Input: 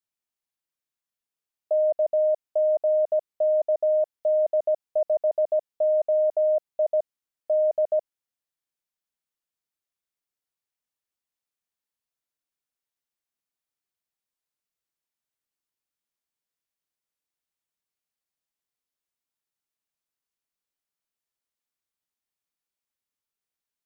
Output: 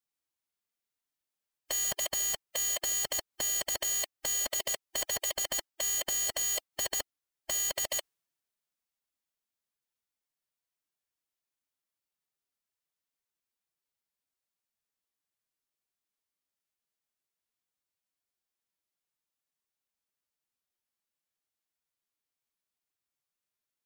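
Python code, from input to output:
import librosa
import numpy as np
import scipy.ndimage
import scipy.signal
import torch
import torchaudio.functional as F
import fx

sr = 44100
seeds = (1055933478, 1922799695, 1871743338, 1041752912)

y = (np.mod(10.0 ** (24.0 / 20.0) * x + 1.0, 2.0) - 1.0) / 10.0 ** (24.0 / 20.0)
y = fx.pitch_keep_formants(y, sr, semitones=4.5)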